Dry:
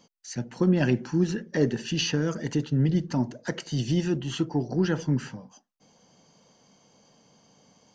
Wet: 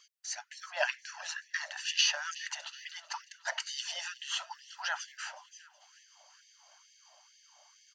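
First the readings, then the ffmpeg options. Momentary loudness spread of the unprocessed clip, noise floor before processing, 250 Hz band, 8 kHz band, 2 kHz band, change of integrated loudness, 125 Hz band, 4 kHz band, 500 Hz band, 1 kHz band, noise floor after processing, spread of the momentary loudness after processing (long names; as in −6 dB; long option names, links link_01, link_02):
10 LU, −63 dBFS, below −40 dB, can't be measured, +2.0 dB, −8.5 dB, below −40 dB, +2.0 dB, −15.5 dB, −1.0 dB, −64 dBFS, 15 LU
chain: -af "aecho=1:1:370|740|1110|1480|1850:0.112|0.0628|0.0352|0.0197|0.011,afftfilt=real='re*gte(b*sr/1024,550*pow(1700/550,0.5+0.5*sin(2*PI*2.2*pts/sr)))':imag='im*gte(b*sr/1024,550*pow(1700/550,0.5+0.5*sin(2*PI*2.2*pts/sr)))':win_size=1024:overlap=0.75,volume=2dB"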